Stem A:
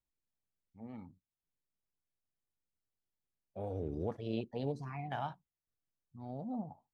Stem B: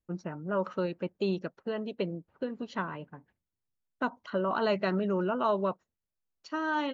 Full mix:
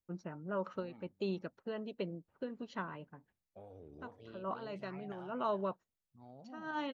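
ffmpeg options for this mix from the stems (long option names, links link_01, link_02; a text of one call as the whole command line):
ffmpeg -i stem1.wav -i stem2.wav -filter_complex "[0:a]lowshelf=frequency=350:gain=-6.5,acompressor=threshold=-44dB:ratio=6,volume=-5.5dB,asplit=3[link_01][link_02][link_03];[link_02]volume=-10.5dB[link_04];[1:a]volume=-7dB[link_05];[link_03]apad=whole_len=305706[link_06];[link_05][link_06]sidechaincompress=threshold=-59dB:ratio=8:attack=5.5:release=102[link_07];[link_04]aecho=0:1:420:1[link_08];[link_01][link_07][link_08]amix=inputs=3:normalize=0" out.wav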